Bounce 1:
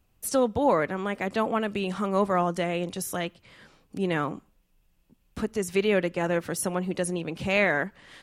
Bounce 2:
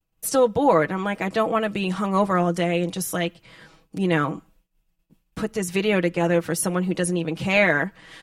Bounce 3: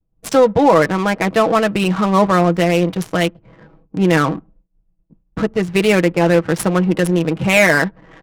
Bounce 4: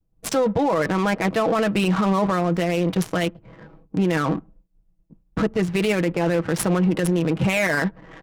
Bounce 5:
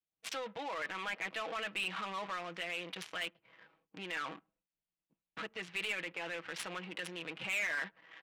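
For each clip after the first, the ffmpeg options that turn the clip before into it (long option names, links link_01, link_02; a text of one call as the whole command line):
ffmpeg -i in.wav -af "agate=range=-33dB:threshold=-57dB:ratio=3:detection=peak,aecho=1:1:6.2:0.58,volume=3.5dB" out.wav
ffmpeg -i in.wav -filter_complex "[0:a]asplit=2[link_01][link_02];[link_02]alimiter=limit=-14dB:level=0:latency=1:release=13,volume=1dB[link_03];[link_01][link_03]amix=inputs=2:normalize=0,adynamicsmooth=sensitivity=2.5:basefreq=560,volume=2dB" out.wav
ffmpeg -i in.wav -af "alimiter=limit=-13dB:level=0:latency=1:release=12" out.wav
ffmpeg -i in.wav -af "bandpass=frequency=2800:width_type=q:width=1.4:csg=0,asoftclip=type=tanh:threshold=-25dB,volume=-4dB" out.wav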